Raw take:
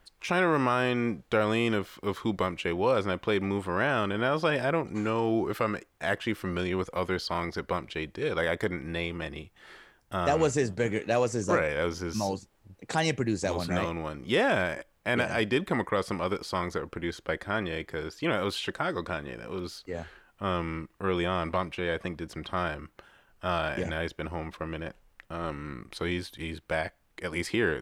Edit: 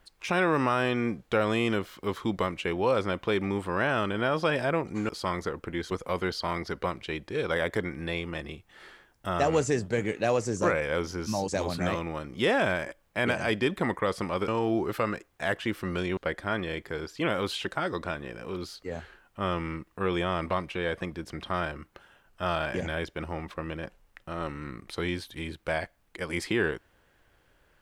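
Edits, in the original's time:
5.09–6.78 swap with 16.38–17.2
12.35–13.38 cut

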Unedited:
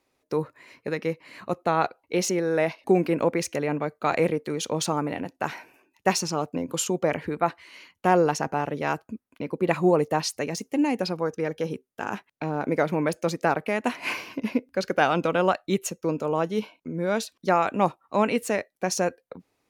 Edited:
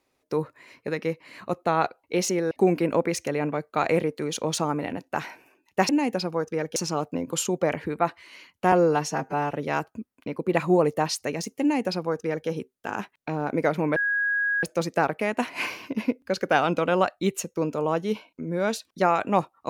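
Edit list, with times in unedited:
2.51–2.79 cut
8.13–8.67 stretch 1.5×
10.75–11.62 copy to 6.17
13.1 add tone 1650 Hz -21.5 dBFS 0.67 s

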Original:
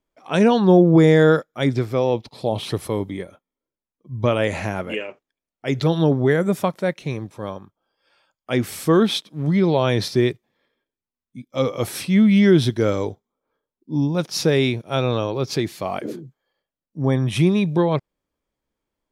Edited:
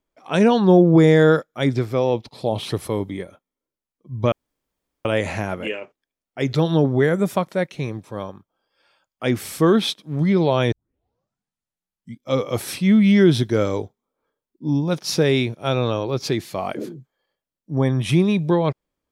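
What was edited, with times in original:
4.32 insert room tone 0.73 s
9.99 tape start 1.50 s

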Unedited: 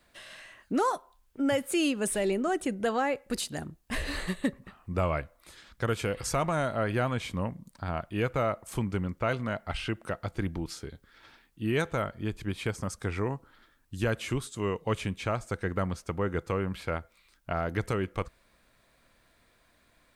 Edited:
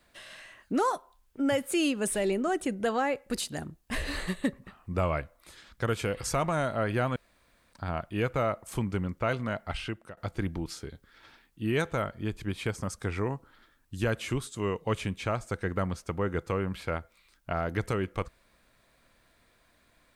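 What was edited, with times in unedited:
7.16–7.73 room tone
9.58–10.17 fade out equal-power, to -18.5 dB

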